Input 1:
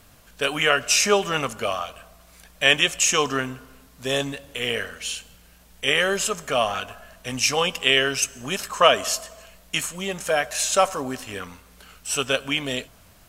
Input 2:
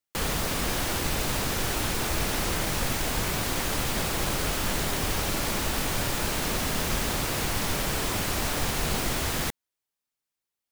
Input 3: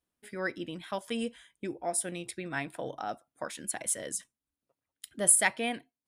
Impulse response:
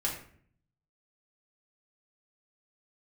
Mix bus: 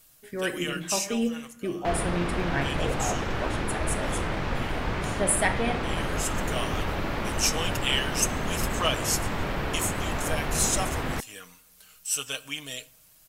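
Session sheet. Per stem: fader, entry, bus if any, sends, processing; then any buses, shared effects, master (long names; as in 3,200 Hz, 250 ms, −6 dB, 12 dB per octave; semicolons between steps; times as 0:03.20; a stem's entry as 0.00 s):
−2.0 dB, 0.00 s, send −22 dB, first-order pre-emphasis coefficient 0.8; comb filter 6.4 ms, depth 56%; automatic ducking −14 dB, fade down 1.95 s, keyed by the third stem
+0.5 dB, 1.70 s, no send, low-pass filter 2,300 Hz 12 dB per octave
−1.0 dB, 0.00 s, send −6 dB, spectral tilt −2 dB per octave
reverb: on, RT60 0.55 s, pre-delay 3 ms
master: no processing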